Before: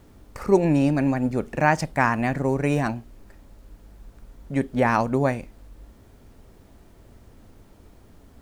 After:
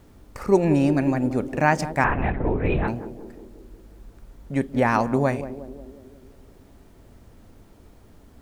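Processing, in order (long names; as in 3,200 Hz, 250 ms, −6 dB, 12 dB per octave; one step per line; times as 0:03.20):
0:02.04–0:02.88: linear-prediction vocoder at 8 kHz whisper
feedback echo with a band-pass in the loop 181 ms, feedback 65%, band-pass 340 Hz, level −10 dB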